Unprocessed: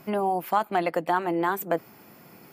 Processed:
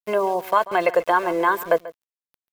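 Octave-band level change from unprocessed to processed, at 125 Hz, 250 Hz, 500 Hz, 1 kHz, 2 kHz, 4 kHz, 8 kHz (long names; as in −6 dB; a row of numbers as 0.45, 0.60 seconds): −4.5, −0.5, +7.0, +4.5, +8.0, +5.0, +3.0 decibels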